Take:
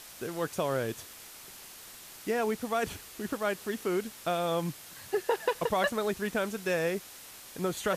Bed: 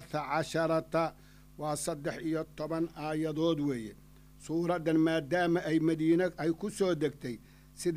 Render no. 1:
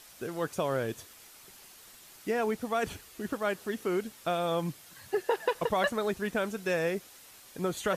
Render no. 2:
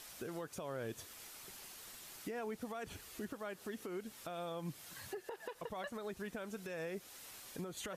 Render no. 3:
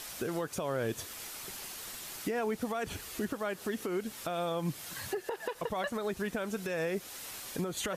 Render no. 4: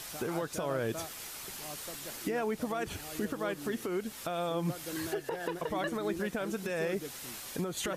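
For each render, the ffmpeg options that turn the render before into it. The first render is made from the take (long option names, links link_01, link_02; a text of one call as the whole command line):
ffmpeg -i in.wav -af "afftdn=noise_reduction=6:noise_floor=-49" out.wav
ffmpeg -i in.wav -af "acompressor=threshold=-33dB:ratio=6,alimiter=level_in=9.5dB:limit=-24dB:level=0:latency=1:release=310,volume=-9.5dB" out.wav
ffmpeg -i in.wav -af "volume=9.5dB" out.wav
ffmpeg -i in.wav -i bed.wav -filter_complex "[1:a]volume=-12.5dB[link_01];[0:a][link_01]amix=inputs=2:normalize=0" out.wav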